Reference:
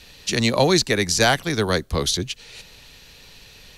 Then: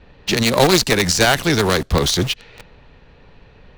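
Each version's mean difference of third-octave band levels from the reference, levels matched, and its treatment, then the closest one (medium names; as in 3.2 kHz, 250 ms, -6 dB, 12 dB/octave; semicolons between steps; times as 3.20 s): 6.0 dB: level-controlled noise filter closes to 1.1 kHz, open at -17 dBFS; in parallel at -5 dB: companded quantiser 2-bit; on the sum: loudness maximiser +6.5 dB; loudspeaker Doppler distortion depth 0.2 ms; trim -1.5 dB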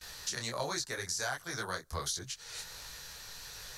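9.5 dB: gate with hold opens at -37 dBFS; FFT filter 140 Hz 0 dB, 220 Hz -7 dB, 1.5 kHz +11 dB, 2.6 kHz -3 dB, 5.9 kHz +10 dB; compression 4:1, threshold -31 dBFS, peak gain reduction 20.5 dB; detune thickener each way 48 cents; trim -1.5 dB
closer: first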